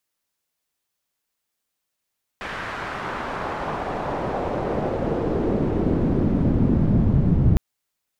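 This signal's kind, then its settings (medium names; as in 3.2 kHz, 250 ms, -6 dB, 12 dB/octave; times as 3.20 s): swept filtered noise white, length 5.16 s lowpass, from 1.8 kHz, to 130 Hz, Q 1.3, exponential, gain ramp +27 dB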